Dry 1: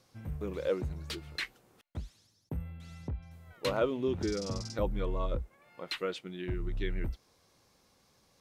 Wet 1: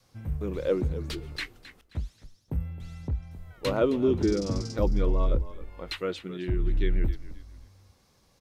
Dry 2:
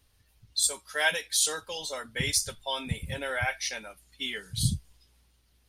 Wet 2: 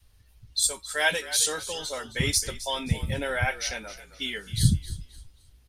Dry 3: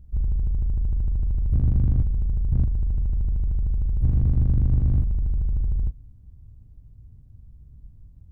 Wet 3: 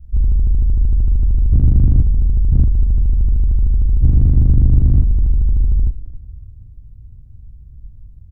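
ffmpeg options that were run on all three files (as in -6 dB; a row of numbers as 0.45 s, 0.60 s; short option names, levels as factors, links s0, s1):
-filter_complex "[0:a]lowshelf=f=100:g=9.5,asplit=4[s0][s1][s2][s3];[s1]adelay=265,afreqshift=-43,volume=0.188[s4];[s2]adelay=530,afreqshift=-86,volume=0.0603[s5];[s3]adelay=795,afreqshift=-129,volume=0.0193[s6];[s0][s4][s5][s6]amix=inputs=4:normalize=0,adynamicequalizer=threshold=0.0126:dfrequency=300:dqfactor=0.99:tfrequency=300:tqfactor=0.99:attack=5:release=100:ratio=0.375:range=3.5:mode=boostabove:tftype=bell,volume=1.19"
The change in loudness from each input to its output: +6.5 LU, +2.5 LU, +8.5 LU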